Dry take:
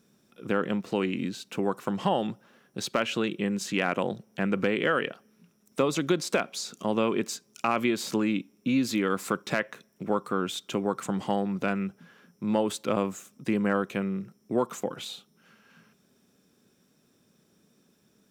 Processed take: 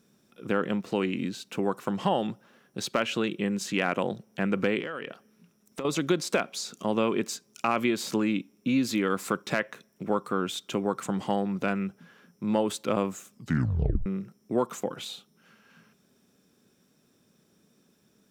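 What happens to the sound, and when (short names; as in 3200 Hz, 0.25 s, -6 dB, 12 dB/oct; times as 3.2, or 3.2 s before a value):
4.79–5.85 compressor, threshold -31 dBFS
13.33 tape stop 0.73 s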